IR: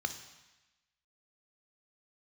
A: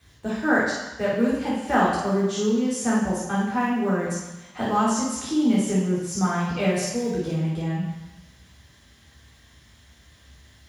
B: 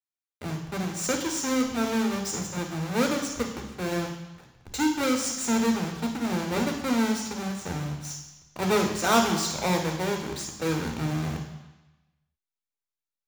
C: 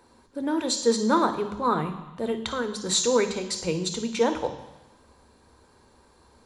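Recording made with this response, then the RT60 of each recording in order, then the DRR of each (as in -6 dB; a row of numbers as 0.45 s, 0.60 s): C; 1.0 s, 1.0 s, 1.0 s; -6.5 dB, 3.0 dB, 7.5 dB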